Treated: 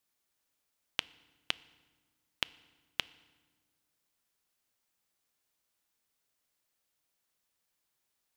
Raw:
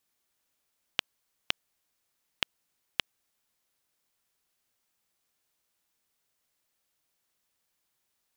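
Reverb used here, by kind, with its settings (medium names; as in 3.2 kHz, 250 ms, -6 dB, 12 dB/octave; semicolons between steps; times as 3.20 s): FDN reverb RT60 1.3 s, low-frequency decay 1.55×, high-frequency decay 0.8×, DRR 18.5 dB; trim -3 dB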